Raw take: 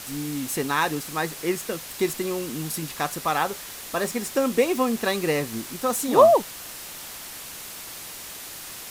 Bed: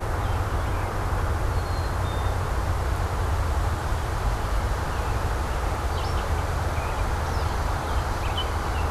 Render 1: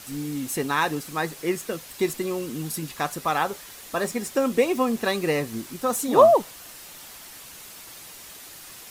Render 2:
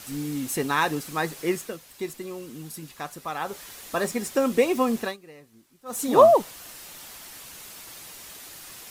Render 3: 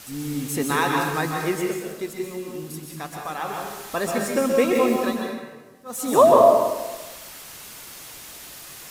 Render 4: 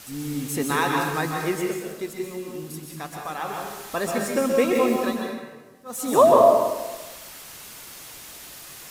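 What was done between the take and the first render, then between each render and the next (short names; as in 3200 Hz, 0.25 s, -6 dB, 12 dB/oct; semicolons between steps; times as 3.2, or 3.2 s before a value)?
denoiser 6 dB, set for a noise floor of -39 dBFS
1.54–3.63 dip -8 dB, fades 0.24 s; 4.98–6.04 dip -23.5 dB, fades 0.19 s
plate-style reverb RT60 1.2 s, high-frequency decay 0.7×, pre-delay 0.115 s, DRR 0 dB
gain -1 dB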